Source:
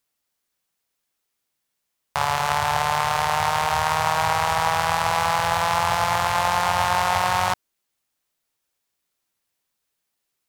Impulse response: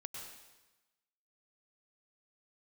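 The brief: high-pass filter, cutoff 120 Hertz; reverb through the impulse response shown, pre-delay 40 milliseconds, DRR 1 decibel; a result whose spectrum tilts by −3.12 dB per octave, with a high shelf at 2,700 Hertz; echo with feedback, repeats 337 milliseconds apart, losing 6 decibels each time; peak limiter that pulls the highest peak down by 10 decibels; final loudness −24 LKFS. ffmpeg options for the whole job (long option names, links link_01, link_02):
-filter_complex "[0:a]highpass=120,highshelf=frequency=2700:gain=-5.5,alimiter=limit=-17dB:level=0:latency=1,aecho=1:1:337|674|1011|1348|1685|2022:0.501|0.251|0.125|0.0626|0.0313|0.0157,asplit=2[link_01][link_02];[1:a]atrim=start_sample=2205,adelay=40[link_03];[link_02][link_03]afir=irnorm=-1:irlink=0,volume=1.5dB[link_04];[link_01][link_04]amix=inputs=2:normalize=0,volume=1dB"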